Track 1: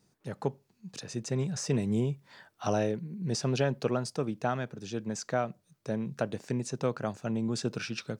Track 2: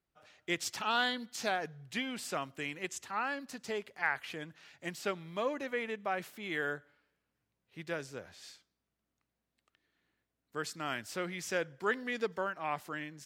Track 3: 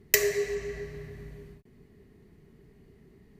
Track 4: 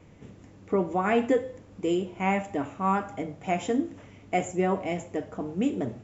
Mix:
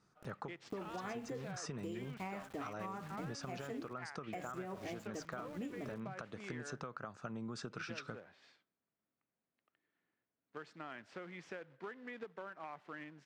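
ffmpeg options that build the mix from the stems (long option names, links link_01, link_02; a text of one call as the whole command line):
ffmpeg -i stem1.wav -i stem2.wav -i stem3.wav -i stem4.wav -filter_complex "[0:a]lowpass=7100,equalizer=frequency=1300:width=1.8:gain=12.5,acompressor=threshold=-28dB:ratio=6,volume=-5.5dB[link_01];[1:a]acrusher=bits=2:mode=log:mix=0:aa=0.000001,volume=-5dB[link_02];[3:a]aeval=exprs='val(0)*gte(abs(val(0)),0.0119)':channel_layout=same,volume=-9dB[link_03];[link_01][link_03]amix=inputs=2:normalize=0,equalizer=frequency=1200:width=7.5:gain=3.5,alimiter=level_in=3dB:limit=-24dB:level=0:latency=1:release=290,volume=-3dB,volume=0dB[link_04];[link_02]highpass=150,lowpass=2300,acompressor=threshold=-42dB:ratio=6,volume=0dB[link_05];[link_04][link_05]amix=inputs=2:normalize=0,acompressor=threshold=-41dB:ratio=4" out.wav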